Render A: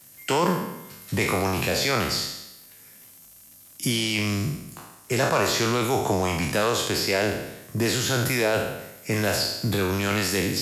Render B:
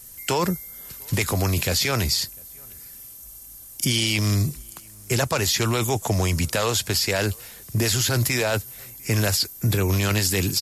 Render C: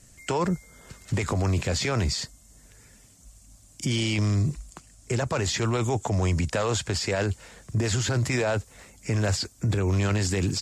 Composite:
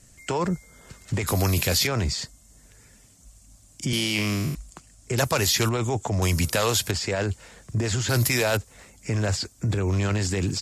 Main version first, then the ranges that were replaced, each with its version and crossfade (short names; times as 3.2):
C
1.27–1.87 from B
3.93–4.55 from A
5.18–5.69 from B
6.22–6.91 from B
8.09–8.57 from B